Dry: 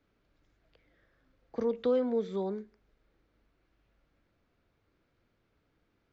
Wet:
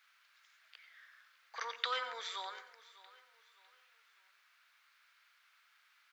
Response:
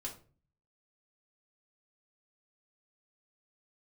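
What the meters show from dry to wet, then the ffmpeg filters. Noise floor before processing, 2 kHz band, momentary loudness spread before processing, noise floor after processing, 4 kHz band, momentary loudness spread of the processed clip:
−76 dBFS, +13.5 dB, 12 LU, −71 dBFS, +14.0 dB, 23 LU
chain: -filter_complex "[0:a]highpass=frequency=1300:width=0.5412,highpass=frequency=1300:width=1.3066,aecho=1:1:603|1206|1809:0.112|0.0404|0.0145,asplit=2[link_01][link_02];[1:a]atrim=start_sample=2205,adelay=88[link_03];[link_02][link_03]afir=irnorm=-1:irlink=0,volume=-10dB[link_04];[link_01][link_04]amix=inputs=2:normalize=0,volume=13.5dB"

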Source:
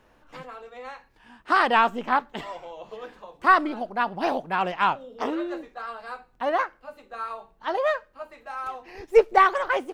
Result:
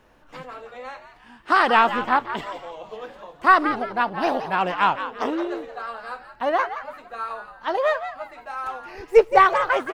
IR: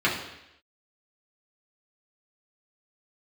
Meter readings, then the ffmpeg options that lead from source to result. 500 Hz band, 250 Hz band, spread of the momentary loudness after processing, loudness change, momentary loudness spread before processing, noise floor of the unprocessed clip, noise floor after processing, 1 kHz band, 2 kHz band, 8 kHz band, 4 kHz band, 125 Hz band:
+3.0 dB, +2.5 dB, 21 LU, +3.0 dB, 21 LU, −61 dBFS, −52 dBFS, +3.0 dB, +3.0 dB, can't be measured, +3.0 dB, +3.0 dB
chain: -filter_complex "[0:a]asplit=4[link_01][link_02][link_03][link_04];[link_02]adelay=172,afreqshift=110,volume=-11dB[link_05];[link_03]adelay=344,afreqshift=220,volume=-21.5dB[link_06];[link_04]adelay=516,afreqshift=330,volume=-31.9dB[link_07];[link_01][link_05][link_06][link_07]amix=inputs=4:normalize=0,volume=2.5dB"

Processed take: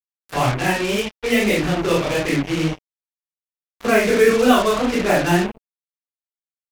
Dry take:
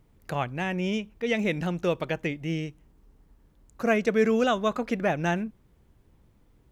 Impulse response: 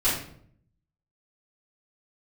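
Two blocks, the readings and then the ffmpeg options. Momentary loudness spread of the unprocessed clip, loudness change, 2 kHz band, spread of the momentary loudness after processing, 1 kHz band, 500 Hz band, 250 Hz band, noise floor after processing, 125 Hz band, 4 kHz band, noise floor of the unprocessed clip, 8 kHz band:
9 LU, +9.0 dB, +9.5 dB, 9 LU, +9.5 dB, +8.5 dB, +8.0 dB, below −85 dBFS, +7.5 dB, +12.0 dB, −62 dBFS, can't be measured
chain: -filter_complex "[1:a]atrim=start_sample=2205,atrim=end_sample=4410[link_01];[0:a][link_01]afir=irnorm=-1:irlink=0,flanger=delay=22.5:depth=7.7:speed=1.8,acrusher=bits=3:mix=0:aa=0.5"

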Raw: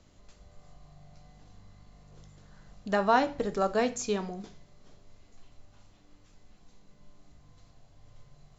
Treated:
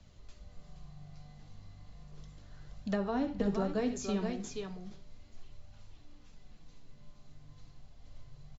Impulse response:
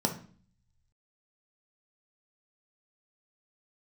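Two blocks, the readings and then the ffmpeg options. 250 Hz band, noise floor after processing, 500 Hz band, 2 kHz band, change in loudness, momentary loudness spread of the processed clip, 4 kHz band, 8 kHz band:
+0.5 dB, −57 dBFS, −6.5 dB, −11.0 dB, −6.0 dB, 22 LU, −6.5 dB, can't be measured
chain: -filter_complex "[0:a]asplit=2[link_01][link_02];[link_02]aecho=0:1:69|473:0.2|0.376[link_03];[link_01][link_03]amix=inputs=2:normalize=0,acrossover=split=450[link_04][link_05];[link_05]acompressor=threshold=-37dB:ratio=5[link_06];[link_04][link_06]amix=inputs=2:normalize=0,highshelf=frequency=2900:gain=8.5,acrossover=split=230[link_07][link_08];[link_07]acontrast=65[link_09];[link_08]lowpass=5000[link_10];[link_09][link_10]amix=inputs=2:normalize=0,flanger=delay=1.1:depth=8:regen=-39:speed=0.35:shape=triangular"

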